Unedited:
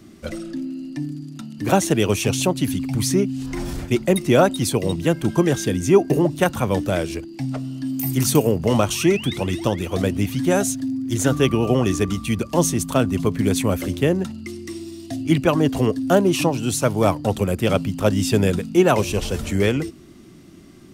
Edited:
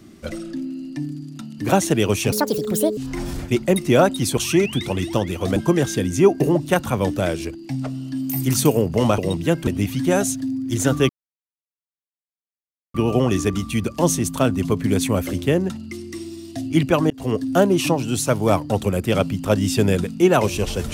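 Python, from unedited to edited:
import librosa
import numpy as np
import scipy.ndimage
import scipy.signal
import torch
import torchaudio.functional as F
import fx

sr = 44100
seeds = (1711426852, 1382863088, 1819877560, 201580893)

y = fx.edit(x, sr, fx.speed_span(start_s=2.32, length_s=1.05, speed=1.61),
    fx.swap(start_s=4.77, length_s=0.49, other_s=8.88, other_length_s=1.19),
    fx.insert_silence(at_s=11.49, length_s=1.85),
    fx.fade_in_span(start_s=15.65, length_s=0.29), tone=tone)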